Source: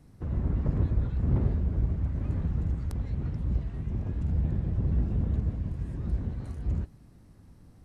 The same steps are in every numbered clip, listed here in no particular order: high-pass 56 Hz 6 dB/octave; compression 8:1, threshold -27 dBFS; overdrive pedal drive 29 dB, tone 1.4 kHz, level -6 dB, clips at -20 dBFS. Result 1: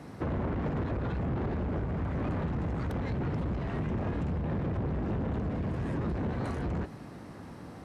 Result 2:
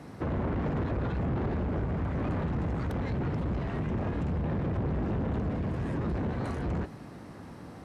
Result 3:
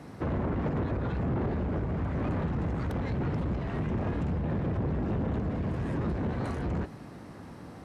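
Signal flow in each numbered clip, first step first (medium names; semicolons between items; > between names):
overdrive pedal > compression > high-pass; overdrive pedal > high-pass > compression; compression > overdrive pedal > high-pass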